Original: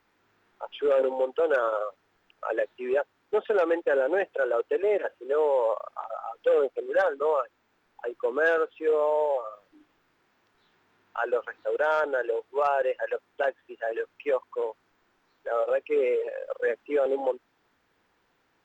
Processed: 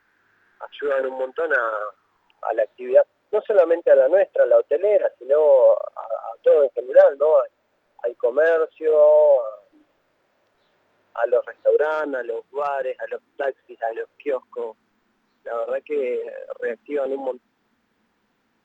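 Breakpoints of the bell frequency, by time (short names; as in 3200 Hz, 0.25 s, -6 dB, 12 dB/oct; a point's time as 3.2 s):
bell +14 dB 0.41 oct
1.77 s 1600 Hz
2.71 s 580 Hz
11.61 s 580 Hz
12.44 s 180 Hz
13.07 s 180 Hz
13.93 s 900 Hz
14.44 s 220 Hz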